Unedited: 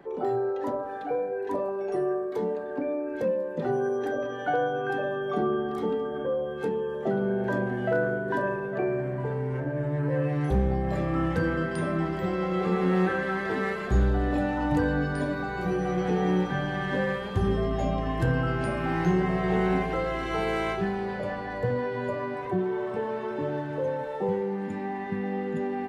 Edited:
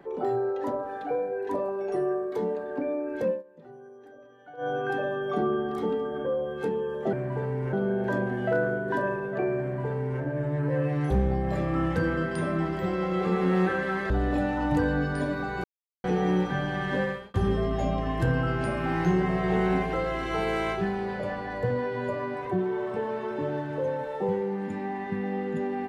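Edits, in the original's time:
3.30–4.70 s: dip -20.5 dB, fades 0.13 s
9.01–9.61 s: copy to 7.13 s
13.50–14.10 s: delete
15.64–16.04 s: mute
17.02–17.34 s: fade out

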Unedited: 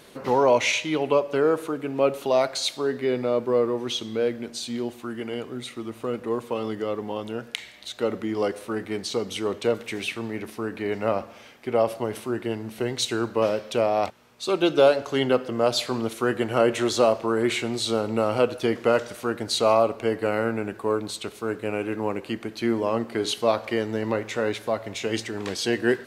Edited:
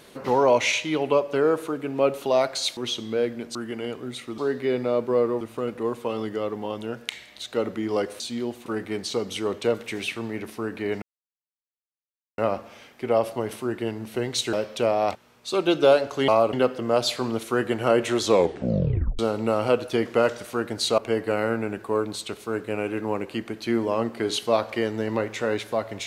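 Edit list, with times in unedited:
2.77–3.80 s: move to 5.87 s
4.58–5.04 s: move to 8.66 s
11.02 s: insert silence 1.36 s
13.17–13.48 s: delete
16.92 s: tape stop 0.97 s
19.68–19.93 s: move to 15.23 s

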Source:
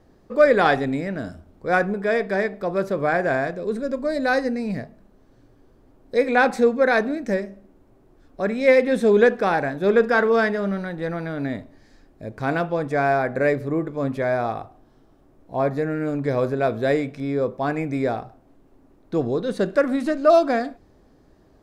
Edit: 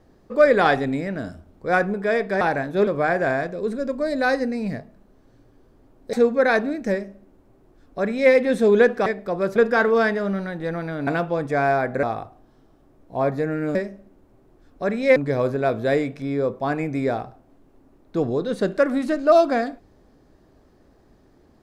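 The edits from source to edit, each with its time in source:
2.41–2.91 s: swap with 9.48–9.94 s
6.17–6.55 s: delete
7.33–8.74 s: copy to 16.14 s
11.45–12.48 s: delete
13.44–14.42 s: delete

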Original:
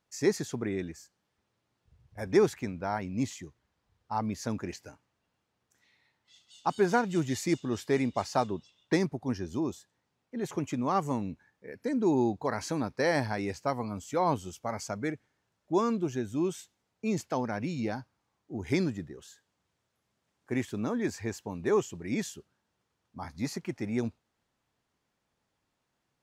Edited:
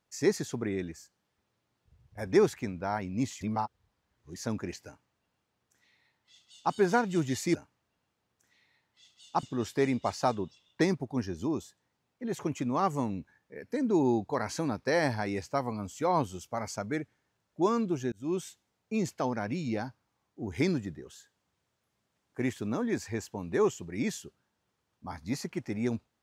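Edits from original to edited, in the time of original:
3.41–4.36 s: reverse
4.86–6.74 s: copy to 7.55 s
16.24–16.49 s: fade in

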